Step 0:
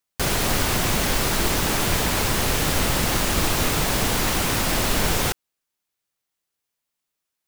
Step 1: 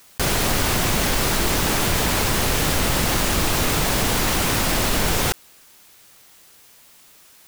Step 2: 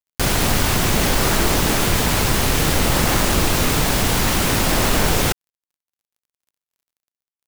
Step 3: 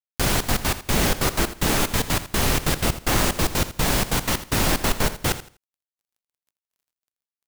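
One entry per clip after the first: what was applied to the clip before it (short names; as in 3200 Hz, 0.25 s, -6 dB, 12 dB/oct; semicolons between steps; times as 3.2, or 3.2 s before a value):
fast leveller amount 50%
in parallel at -10 dB: decimation with a swept rate 39×, swing 160% 0.56 Hz; on the sum: crossover distortion -39.5 dBFS; gain +2 dB
step gate "..xxx.x.x" 186 bpm -60 dB; feedback echo 82 ms, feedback 25%, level -13.5 dB; gain -2.5 dB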